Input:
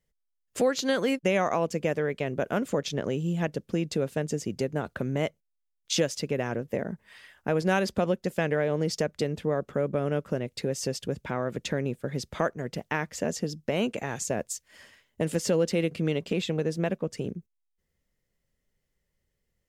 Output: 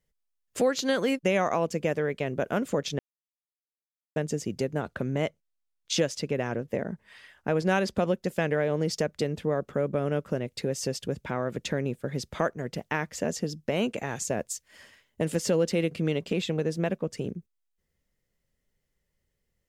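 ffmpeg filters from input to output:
ffmpeg -i in.wav -filter_complex "[0:a]asettb=1/sr,asplit=3[link_01][link_02][link_03];[link_01]atrim=end=4.814[link_04];[link_02]atrim=start=4.81:end=7.97,asetpts=PTS-STARTPTS,afade=type=in:duration=0.004:curve=qsin,afade=type=out:start_time=3.156:duration=0.004:curve=qsin,highshelf=frequency=12000:gain=-9[link_05];[link_03]atrim=start=7.966[link_06];[link_04][link_05]acrossfade=duration=0.004:curve1=hsin:curve2=qsin[link_07];[link_07][link_06]acrossfade=duration=0.004:curve1=qsin:curve2=hsin,asplit=3[link_08][link_09][link_10];[link_08]atrim=end=2.99,asetpts=PTS-STARTPTS,afade=type=out:start_time=2.986:duration=0.004:curve=hsin[link_11];[link_09]atrim=start=2.99:end=4.16,asetpts=PTS-STARTPTS,volume=0[link_12];[link_10]atrim=start=4.16,asetpts=PTS-STARTPTS,afade=type=in:duration=0.004:curve=hsin[link_13];[link_11][link_12][link_13]concat=n=3:v=0:a=1" out.wav

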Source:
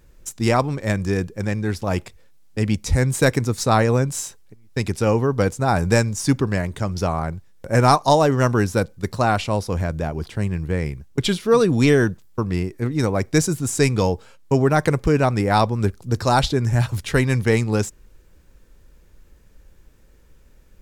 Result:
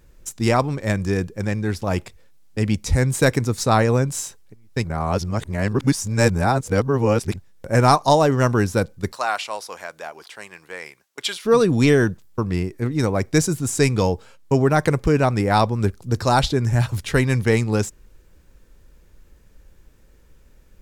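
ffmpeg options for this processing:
ffmpeg -i in.wav -filter_complex "[0:a]asettb=1/sr,asplit=3[link_01][link_02][link_03];[link_01]atrim=end=9.124[link_04];[link_02]atrim=start=9.12:end=11.45,asetpts=PTS-STARTPTS,afade=type=in:duration=0.004:curve=qsin,afade=type=out:start_time=2.326:duration=0.004:curve=qsin,highpass=840[link_05];[link_03]atrim=start=11.446[link_06];[link_04][link_05]acrossfade=duration=0.004:curve1=hsin:curve2=qsin[link_07];[link_07][link_06]acrossfade=duration=0.004:curve1=qsin:curve2=hsin,asplit=3[link_08][link_09][link_10];[link_08]atrim=end=4.842[link_11];[link_09]atrim=start=4.838:end=7.362,asetpts=PTS-STARTPTS,areverse[link_12];[link_10]atrim=start=7.358[link_13];[link_11][link_12]acrossfade=duration=0.004:curve1=hsin:curve2=hsin[link_14];[link_14][link_13]acrossfade=duration=0.004:curve1=hsin:curve2=hsin" out.wav

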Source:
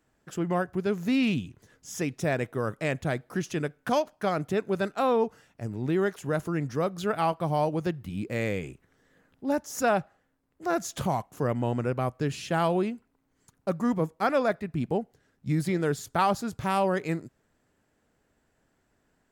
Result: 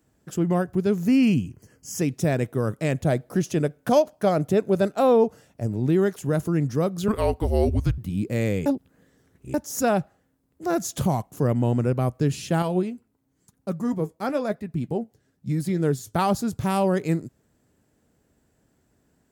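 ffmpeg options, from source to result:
ffmpeg -i in.wav -filter_complex "[0:a]asettb=1/sr,asplit=3[link_01][link_02][link_03];[link_01]atrim=end=1.074[link_04];[link_02]atrim=start=1.07:end=1.99,asetpts=PTS-STARTPTS,afade=type=in:duration=0.004:curve=qsin,afade=type=out:start_time=0.916:duration=0.004:curve=qsin,asuperstop=centerf=3700:order=8:qfactor=3.6[link_05];[link_03]atrim=start=1.986[link_06];[link_04][link_05]acrossfade=duration=0.004:curve1=hsin:curve2=qsin[link_07];[link_07][link_06]acrossfade=duration=0.004:curve1=qsin:curve2=hsin,asettb=1/sr,asplit=3[link_08][link_09][link_10];[link_08]atrim=end=3.004[link_11];[link_09]atrim=start=3:end=5.8,asetpts=PTS-STARTPTS,afade=type=in:duration=0.004:curve=qsin,afade=type=out:start_time=2.796:duration=0.004:curve=qsin,equalizer=frequency=600:width_type=o:width=0.77:gain=6[link_12];[link_10]atrim=start=5.796[link_13];[link_11][link_12]acrossfade=duration=0.004:curve1=hsin:curve2=qsin[link_14];[link_14][link_13]acrossfade=duration=0.004:curve1=qsin:curve2=hsin,asettb=1/sr,asplit=3[link_15][link_16][link_17];[link_15]atrim=end=7.084[link_18];[link_16]atrim=start=7.08:end=7.98,asetpts=PTS-STARTPTS,afade=type=in:duration=0.004:curve=qsin,afade=type=out:start_time=0.896:duration=0.004:curve=qsin,afreqshift=-220[link_19];[link_17]atrim=start=7.976[link_20];[link_18][link_19]acrossfade=duration=0.004:curve1=hsin:curve2=qsin[link_21];[link_21][link_20]acrossfade=duration=0.004:curve1=qsin:curve2=hsin,asettb=1/sr,asplit=3[link_22][link_23][link_24];[link_22]atrim=end=12.624[link_25];[link_23]atrim=start=12.62:end=16.14,asetpts=PTS-STARTPTS,afade=type=in:duration=0.004:curve=qsin,afade=type=out:start_time=3.516:duration=0.004:curve=qsin,flanger=delay=3.5:depth=6.2:regen=59:speed=1:shape=triangular[link_26];[link_24]atrim=start=16.136[link_27];[link_25][link_26]acrossfade=duration=0.004:curve1=hsin:curve2=qsin[link_28];[link_28][link_27]acrossfade=duration=0.004:curve1=qsin:curve2=hsin,asplit=3[link_29][link_30][link_31];[link_29]atrim=end=8.662[link_32];[link_30]atrim=start=8.658:end=9.542,asetpts=PTS-STARTPTS,areverse[link_33];[link_31]atrim=start=9.538[link_34];[link_32][link_33]acrossfade=duration=0.004:curve1=hsin:curve2=hsin[link_35];[link_35][link_34]acrossfade=duration=0.004:curve1=hsin:curve2=hsin,highpass=50,equalizer=frequency=1600:width=0.34:gain=-10,volume=8.5dB" out.wav

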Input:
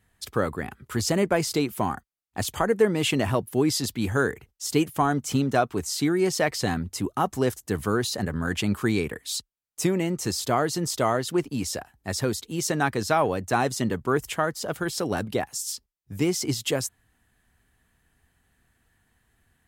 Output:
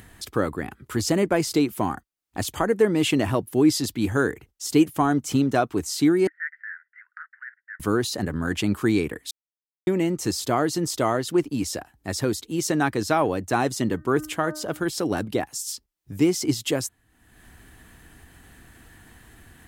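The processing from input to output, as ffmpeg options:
ffmpeg -i in.wav -filter_complex "[0:a]asettb=1/sr,asplit=3[link_01][link_02][link_03];[link_01]atrim=end=6.274[link_04];[link_02]atrim=start=6.27:end=7.8,asetpts=PTS-STARTPTS,afade=type=in:duration=0.004:curve=qsin,afade=type=out:start_time=1.526:duration=0.004:curve=qsin,asuperpass=centerf=1700:order=8:qfactor=3[link_05];[link_03]atrim=start=7.796[link_06];[link_04][link_05]acrossfade=duration=0.004:curve1=hsin:curve2=qsin[link_07];[link_07][link_06]acrossfade=duration=0.004:curve1=qsin:curve2=hsin,asettb=1/sr,asplit=3[link_08][link_09][link_10];[link_08]atrim=end=13.904[link_11];[link_09]atrim=start=13.9:end=14.83,asetpts=PTS-STARTPTS,afade=type=in:duration=0.004:curve=qsin,afade=type=out:start_time=0.926:duration=0.004:curve=qsin,bandreject=frequency=306.6:width_type=h:width=4,bandreject=frequency=613.2:width_type=h:width=4,bandreject=frequency=919.8:width_type=h:width=4,bandreject=frequency=1226.4:width_type=h:width=4,bandreject=frequency=1533:width_type=h:width=4,bandreject=frequency=1839.6:width_type=h:width=4[link_12];[link_10]atrim=start=14.826[link_13];[link_11][link_12]acrossfade=duration=0.004:curve1=hsin:curve2=qsin[link_14];[link_14][link_13]acrossfade=duration=0.004:curve1=qsin:curve2=hsin,asplit=3[link_15][link_16][link_17];[link_15]atrim=end=9.31,asetpts=PTS-STARTPTS,afade=type=out:start_time=9.306:duration=0.004:curve=hsin[link_18];[link_16]atrim=start=9.31:end=9.87,asetpts=PTS-STARTPTS,volume=0[link_19];[link_17]atrim=start=9.87,asetpts=PTS-STARTPTS,afade=type=in:duration=0.004:curve=hsin[link_20];[link_18][link_19][link_20]concat=n=3:v=0:a=1,equalizer=frequency=310:width=3.7:gain=7,acompressor=mode=upward:threshold=-34dB:ratio=2.5" out.wav

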